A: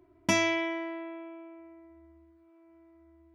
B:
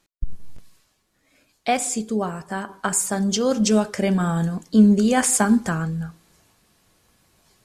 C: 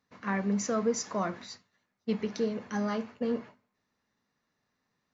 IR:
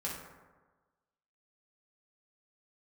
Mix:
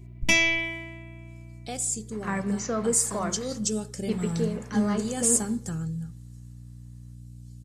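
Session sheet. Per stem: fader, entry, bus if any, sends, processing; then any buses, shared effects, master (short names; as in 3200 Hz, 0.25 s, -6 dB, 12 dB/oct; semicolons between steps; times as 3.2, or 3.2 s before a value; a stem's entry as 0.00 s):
+1.5 dB, 0.00 s, no send, resonant high shelf 1800 Hz +7 dB, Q 3; auto duck -11 dB, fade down 1.05 s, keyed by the second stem
-10.0 dB, 0.00 s, no send, comb 2.3 ms, depth 42%; hum 60 Hz, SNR 15 dB; graphic EQ 125/500/1000/2000/8000 Hz +11/-3/-10/-8/+9 dB
+0.5 dB, 2.00 s, send -17.5 dB, dry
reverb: on, RT60 1.3 s, pre-delay 3 ms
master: dry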